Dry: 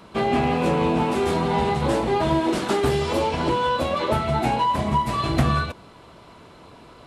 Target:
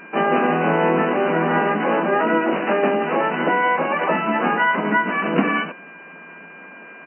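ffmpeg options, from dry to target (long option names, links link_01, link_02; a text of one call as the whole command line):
ffmpeg -i in.wav -filter_complex "[0:a]aeval=exprs='val(0)+0.00794*sin(2*PI*1600*n/s)':channel_layout=same,asplit=4[link_01][link_02][link_03][link_04];[link_02]asetrate=29433,aresample=44100,atempo=1.49831,volume=-15dB[link_05];[link_03]asetrate=66075,aresample=44100,atempo=0.66742,volume=-2dB[link_06];[link_04]asetrate=88200,aresample=44100,atempo=0.5,volume=-4dB[link_07];[link_01][link_05][link_06][link_07]amix=inputs=4:normalize=0,afftfilt=real='re*between(b*sr/4096,160,3000)':imag='im*between(b*sr/4096,160,3000)':win_size=4096:overlap=0.75" out.wav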